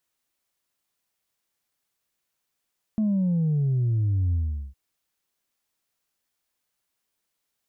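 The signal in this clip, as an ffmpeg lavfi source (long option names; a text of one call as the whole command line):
ffmpeg -f lavfi -i "aevalsrc='0.0944*clip((1.76-t)/0.41,0,1)*tanh(1.12*sin(2*PI*220*1.76/log(65/220)*(exp(log(65/220)*t/1.76)-1)))/tanh(1.12)':duration=1.76:sample_rate=44100" out.wav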